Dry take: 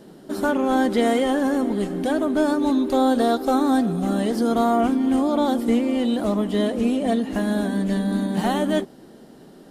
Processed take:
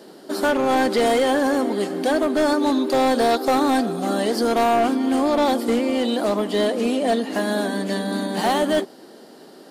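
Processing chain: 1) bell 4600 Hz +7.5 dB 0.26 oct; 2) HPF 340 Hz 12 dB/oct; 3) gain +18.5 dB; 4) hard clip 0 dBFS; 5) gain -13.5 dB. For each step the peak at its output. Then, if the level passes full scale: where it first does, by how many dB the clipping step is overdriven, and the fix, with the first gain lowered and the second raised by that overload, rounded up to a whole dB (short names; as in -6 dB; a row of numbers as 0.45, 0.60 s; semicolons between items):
-9.0, -9.0, +9.5, 0.0, -13.5 dBFS; step 3, 9.5 dB; step 3 +8.5 dB, step 5 -3.5 dB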